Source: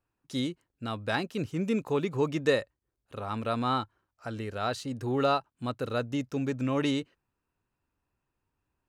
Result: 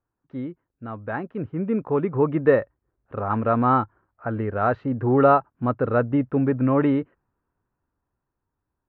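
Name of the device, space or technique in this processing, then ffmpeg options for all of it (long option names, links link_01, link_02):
action camera in a waterproof case: -af "lowpass=frequency=1700:width=0.5412,lowpass=frequency=1700:width=1.3066,dynaudnorm=framelen=310:gausssize=13:maxgain=10.5dB" -ar 48000 -c:a aac -b:a 64k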